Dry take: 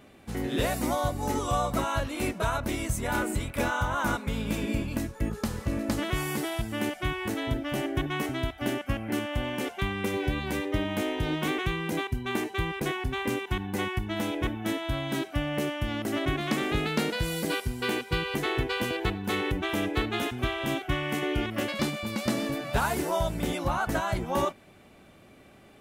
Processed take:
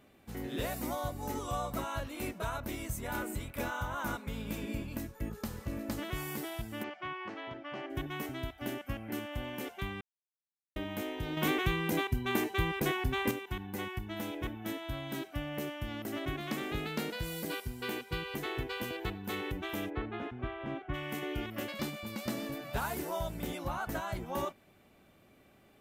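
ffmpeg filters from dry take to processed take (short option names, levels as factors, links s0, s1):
-filter_complex "[0:a]asplit=3[s0][s1][s2];[s0]afade=t=out:st=6.82:d=0.02[s3];[s1]highpass=220,equalizer=f=260:t=q:w=4:g=-9,equalizer=f=450:t=q:w=4:g=-4,equalizer=f=1100:t=q:w=4:g=6,equalizer=f=3800:t=q:w=4:g=-7,lowpass=f=4300:w=0.5412,lowpass=f=4300:w=1.3066,afade=t=in:st=6.82:d=0.02,afade=t=out:st=7.89:d=0.02[s4];[s2]afade=t=in:st=7.89:d=0.02[s5];[s3][s4][s5]amix=inputs=3:normalize=0,asplit=3[s6][s7][s8];[s6]afade=t=out:st=19.89:d=0.02[s9];[s7]lowpass=1800,afade=t=in:st=19.89:d=0.02,afade=t=out:st=20.93:d=0.02[s10];[s8]afade=t=in:st=20.93:d=0.02[s11];[s9][s10][s11]amix=inputs=3:normalize=0,asplit=5[s12][s13][s14][s15][s16];[s12]atrim=end=10.01,asetpts=PTS-STARTPTS,afade=t=out:st=10.006:d=0.004:c=hsin[s17];[s13]atrim=start=10.01:end=10.76,asetpts=PTS-STARTPTS,volume=0[s18];[s14]atrim=start=10.76:end=11.372,asetpts=PTS-STARTPTS,afade=t=in:d=0.004:c=hsin[s19];[s15]atrim=start=11.368:end=13.312,asetpts=PTS-STARTPTS,volume=2.24[s20];[s16]atrim=start=13.308[s21];[s17][s18][s19]concat=n=3:v=0:a=1[s22];[s22][s20]acrossfade=d=0.004:c1=hsin:c2=hsin[s23];[s23][s21]acrossfade=d=0.004:c1=hsin:c2=hsin,equalizer=f=14000:w=5.1:g=14.5,volume=0.376"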